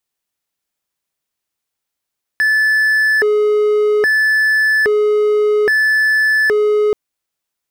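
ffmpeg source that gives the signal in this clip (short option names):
-f lavfi -i "aevalsrc='0.376*(1-4*abs(mod((1080.5*t+659.5/0.61*(0.5-abs(mod(0.61*t,1)-0.5)))+0.25,1)-0.5))':d=4.53:s=44100"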